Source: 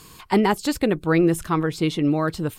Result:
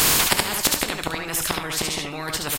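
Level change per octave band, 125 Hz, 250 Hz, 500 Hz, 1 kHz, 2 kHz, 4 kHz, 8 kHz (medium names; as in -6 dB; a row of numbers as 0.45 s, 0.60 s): -8.0 dB, -12.0 dB, -8.0 dB, -1.5 dB, +4.5 dB, +11.5 dB, +16.0 dB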